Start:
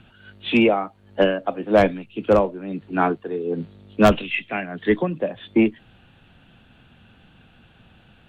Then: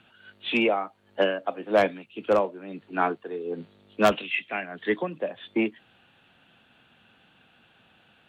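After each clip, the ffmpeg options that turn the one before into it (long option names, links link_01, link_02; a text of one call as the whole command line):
ffmpeg -i in.wav -af "highpass=frequency=490:poles=1,volume=-2.5dB" out.wav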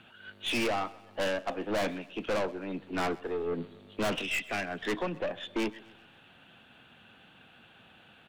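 ffmpeg -i in.wav -af "aeval=exprs='(tanh(35.5*val(0)+0.3)-tanh(0.3))/35.5':channel_layout=same,aecho=1:1:129|258|387|516:0.0891|0.0446|0.0223|0.0111,volume=3.5dB" out.wav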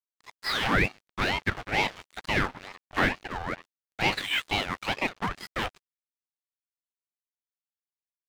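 ffmpeg -i in.wav -af "highpass=frequency=390:width=0.5412,highpass=frequency=390:width=1.3066,equalizer=frequency=490:width_type=q:width=4:gain=-7,equalizer=frequency=830:width_type=q:width=4:gain=5,equalizer=frequency=1200:width_type=q:width=4:gain=8,lowpass=frequency=4100:width=0.5412,lowpass=frequency=4100:width=1.3066,aeval=exprs='sgn(val(0))*max(abs(val(0))-0.00668,0)':channel_layout=same,aeval=exprs='val(0)*sin(2*PI*940*n/s+940*0.65/2.2*sin(2*PI*2.2*n/s))':channel_layout=same,volume=9dB" out.wav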